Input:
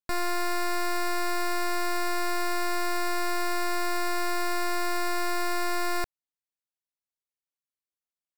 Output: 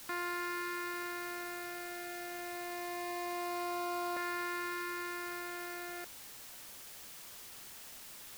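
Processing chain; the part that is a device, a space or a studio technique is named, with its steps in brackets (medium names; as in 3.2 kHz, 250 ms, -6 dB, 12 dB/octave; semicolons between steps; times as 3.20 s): shortwave radio (band-pass 320–2800 Hz; tremolo 0.25 Hz, depth 51%; LFO notch saw up 0.24 Hz 580–1900 Hz; white noise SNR 9 dB); trim -4 dB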